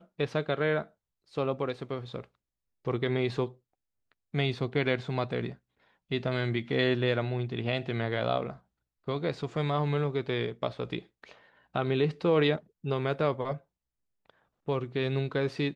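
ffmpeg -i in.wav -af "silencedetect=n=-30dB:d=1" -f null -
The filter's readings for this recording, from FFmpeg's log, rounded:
silence_start: 13.54
silence_end: 14.69 | silence_duration: 1.15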